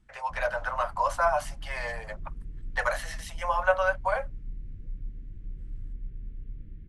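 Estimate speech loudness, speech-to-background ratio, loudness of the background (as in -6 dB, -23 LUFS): -29.0 LUFS, 15.5 dB, -44.5 LUFS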